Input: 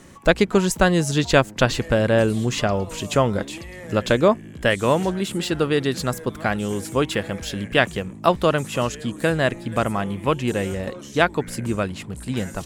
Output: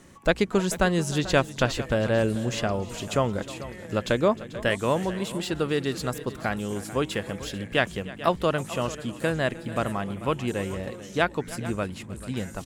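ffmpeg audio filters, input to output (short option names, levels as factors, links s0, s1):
-af "aecho=1:1:308|440:0.119|0.168,volume=0.531"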